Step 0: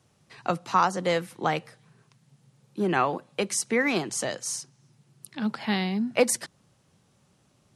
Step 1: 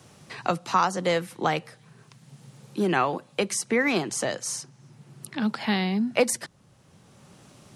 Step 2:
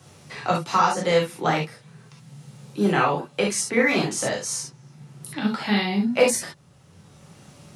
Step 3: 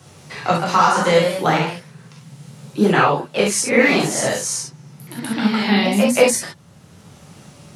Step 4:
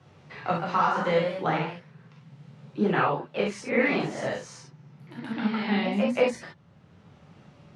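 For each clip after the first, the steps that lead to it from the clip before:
multiband upward and downward compressor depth 40%; level +1.5 dB
reverb whose tail is shaped and stops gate 90 ms flat, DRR −3 dB; level −1.5 dB
delay with pitch and tempo change per echo 163 ms, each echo +1 semitone, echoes 2, each echo −6 dB; level +4.5 dB
low-pass filter 2,900 Hz 12 dB per octave; level −9 dB

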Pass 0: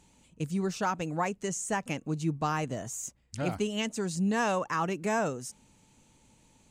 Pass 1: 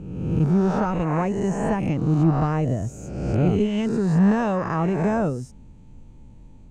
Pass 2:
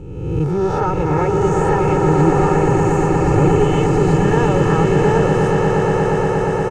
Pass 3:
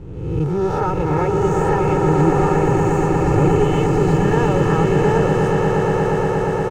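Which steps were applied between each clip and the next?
peak hold with a rise ahead of every peak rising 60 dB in 1.25 s; spectral tilt −4.5 dB per octave
comb filter 2.3 ms, depth 86%; on a send: echo that builds up and dies away 118 ms, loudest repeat 8, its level −7.5 dB; on the sum: level +2.5 dB
slack as between gear wheels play −38 dBFS; level −1.5 dB

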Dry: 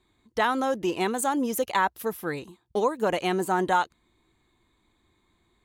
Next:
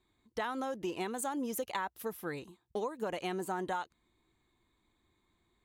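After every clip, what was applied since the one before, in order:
downward compressor, threshold −25 dBFS, peak gain reduction 7.5 dB
level −7 dB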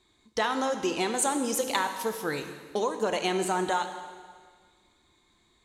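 low-pass filter 6,000 Hz 12 dB per octave
bass and treble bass −4 dB, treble +13 dB
dense smooth reverb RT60 1.7 s, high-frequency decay 0.95×, DRR 6.5 dB
level +8 dB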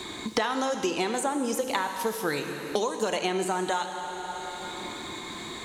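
multiband upward and downward compressor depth 100%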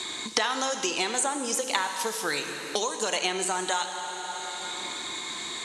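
low-pass filter 9,300 Hz 24 dB per octave
spectral tilt +3 dB per octave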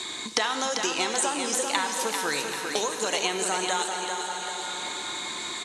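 repeating echo 393 ms, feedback 53%, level −6 dB

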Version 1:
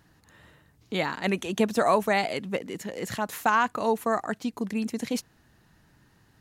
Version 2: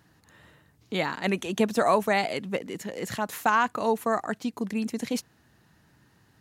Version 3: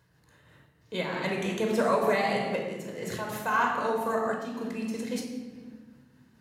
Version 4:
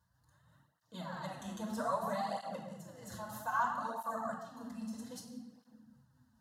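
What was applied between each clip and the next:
high-pass filter 67 Hz
convolution reverb RT60 1.5 s, pre-delay 16 ms, DRR −1 dB; amplitude modulation by smooth noise, depth 50%; level −6 dB
phaser with its sweep stopped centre 970 Hz, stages 4; through-zero flanger with one copy inverted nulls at 0.62 Hz, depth 7.4 ms; level −4 dB

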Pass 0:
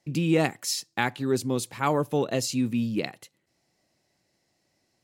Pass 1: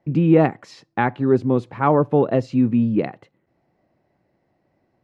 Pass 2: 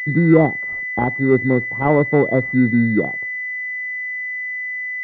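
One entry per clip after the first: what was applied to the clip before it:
low-pass filter 1,300 Hz 12 dB per octave; level +8.5 dB
switching amplifier with a slow clock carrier 2,000 Hz; level +2 dB

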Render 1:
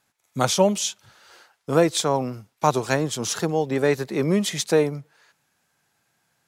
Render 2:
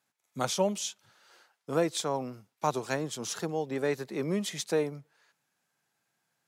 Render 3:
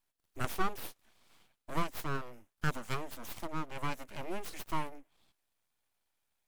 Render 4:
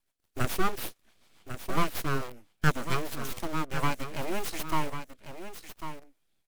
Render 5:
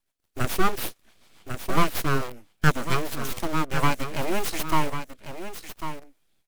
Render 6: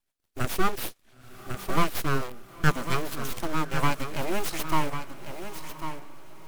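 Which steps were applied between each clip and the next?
high-pass filter 130 Hz; level −9 dB
dynamic equaliser 2,300 Hz, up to −3 dB, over −45 dBFS, Q 0.88; phaser with its sweep stopped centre 1,200 Hz, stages 6; full-wave rectification; level +1 dB
rotating-speaker cabinet horn 7 Hz, later 0.7 Hz, at 0:03.25; in parallel at −5.5 dB: bit reduction 7 bits; on the sum: single-tap delay 1,098 ms −10 dB; level +5 dB
automatic gain control gain up to 6 dB
feedback delay with all-pass diffusion 976 ms, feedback 40%, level −16 dB; level −2.5 dB

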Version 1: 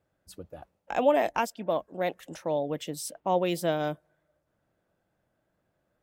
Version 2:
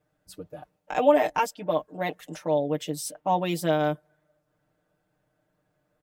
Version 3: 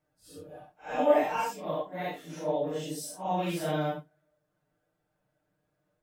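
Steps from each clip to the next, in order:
comb filter 6.6 ms, depth 85%
random phases in long frames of 200 ms; level −4.5 dB

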